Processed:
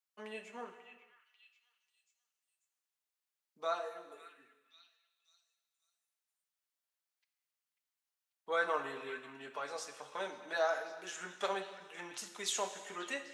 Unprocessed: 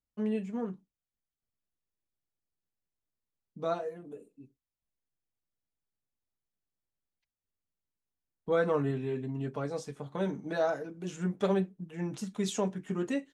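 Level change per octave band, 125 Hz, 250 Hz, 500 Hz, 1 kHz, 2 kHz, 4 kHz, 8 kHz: −27.5 dB, −19.5 dB, −7.5 dB, 0.0 dB, +3.0 dB, +3.5 dB, can't be measured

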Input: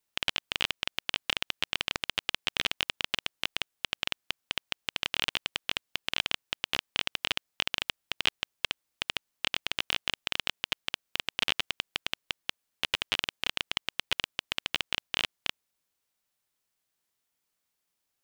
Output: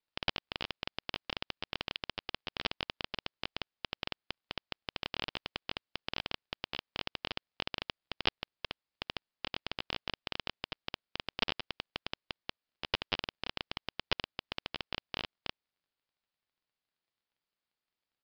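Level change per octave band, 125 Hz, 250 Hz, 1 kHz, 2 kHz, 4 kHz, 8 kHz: 0.0, 0.0, −3.5, −8.5, −8.5, −20.5 decibels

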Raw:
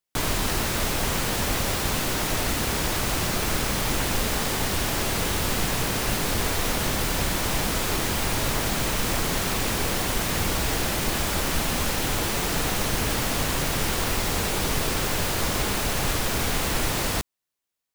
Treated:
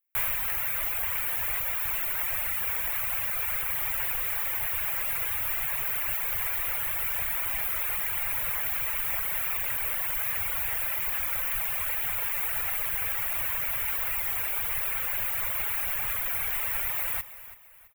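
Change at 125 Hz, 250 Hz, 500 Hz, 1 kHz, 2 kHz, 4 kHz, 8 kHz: −18.0 dB, below −25 dB, −16.5 dB, −10.0 dB, −4.5 dB, −14.5 dB, −9.5 dB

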